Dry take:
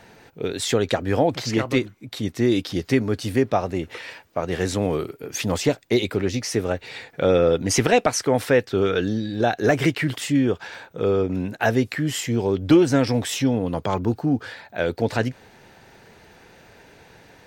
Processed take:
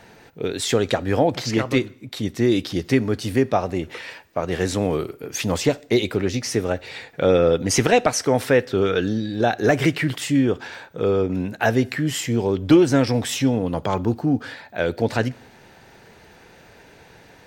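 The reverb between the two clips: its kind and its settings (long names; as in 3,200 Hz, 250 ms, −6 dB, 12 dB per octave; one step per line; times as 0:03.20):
dense smooth reverb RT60 0.61 s, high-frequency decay 0.95×, DRR 19.5 dB
level +1 dB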